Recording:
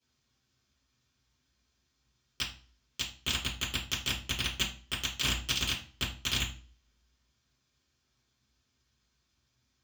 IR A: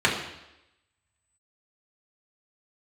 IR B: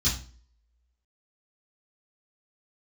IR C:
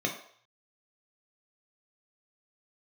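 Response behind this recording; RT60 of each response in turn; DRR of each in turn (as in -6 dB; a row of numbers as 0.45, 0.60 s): B; 0.90, 0.40, 0.55 s; -4.5, -13.0, -0.5 dB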